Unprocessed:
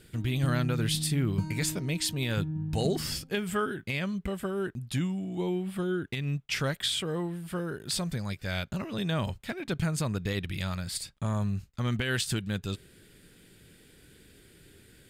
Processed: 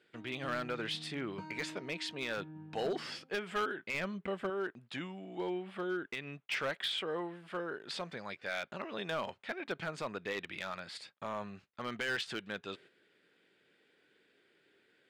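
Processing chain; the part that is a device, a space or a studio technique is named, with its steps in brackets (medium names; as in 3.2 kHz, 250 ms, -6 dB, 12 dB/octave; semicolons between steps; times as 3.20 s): walkie-talkie (band-pass 450–2800 Hz; hard clipper -29 dBFS, distortion -14 dB; gate -57 dBFS, range -7 dB); 3.94–4.50 s: bass shelf 220 Hz +10 dB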